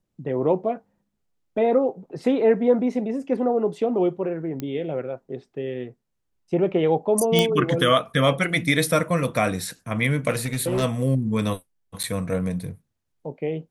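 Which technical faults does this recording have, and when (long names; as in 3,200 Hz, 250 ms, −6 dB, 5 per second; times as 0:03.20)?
0:04.60: click −16 dBFS
0:07.39: click −5 dBFS
0:10.30–0:10.84: clipping −19 dBFS
0:12.03–0:12.04: drop-out 8.2 ms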